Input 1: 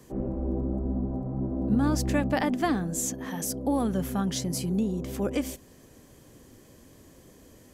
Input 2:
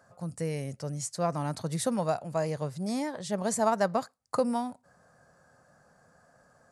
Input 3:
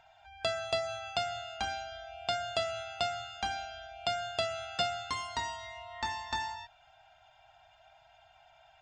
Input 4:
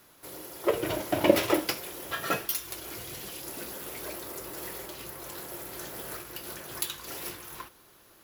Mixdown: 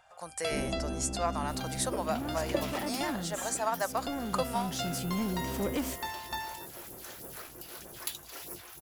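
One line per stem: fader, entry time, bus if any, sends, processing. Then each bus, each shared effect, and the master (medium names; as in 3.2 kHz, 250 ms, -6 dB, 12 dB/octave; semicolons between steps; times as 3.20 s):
-16.5 dB, 0.40 s, no send, waveshaping leveller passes 3
+3.0 dB, 0.00 s, no send, gate -60 dBFS, range -11 dB; high-pass 790 Hz 12 dB/octave
-7.5 dB, 0.00 s, no send, none
-9.5 dB, 1.25 s, no send, phase shifter stages 2, 3.2 Hz, lowest notch 110–3400 Hz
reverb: none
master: gain riding within 5 dB 0.5 s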